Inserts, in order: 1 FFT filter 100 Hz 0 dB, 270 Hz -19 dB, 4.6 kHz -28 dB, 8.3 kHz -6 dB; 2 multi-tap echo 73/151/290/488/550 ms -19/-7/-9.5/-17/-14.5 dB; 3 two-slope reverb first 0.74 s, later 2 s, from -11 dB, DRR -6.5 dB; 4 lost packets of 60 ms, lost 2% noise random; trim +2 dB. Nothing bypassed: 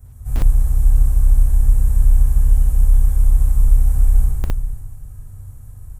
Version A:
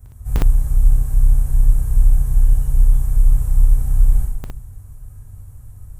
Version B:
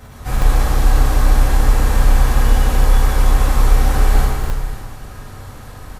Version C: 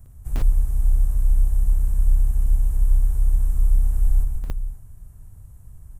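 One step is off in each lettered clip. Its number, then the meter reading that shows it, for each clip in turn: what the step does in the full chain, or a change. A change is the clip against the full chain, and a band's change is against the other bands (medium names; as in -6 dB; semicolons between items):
2, momentary loudness spread change -4 LU; 1, 125 Hz band -17.5 dB; 3, loudness change -5.5 LU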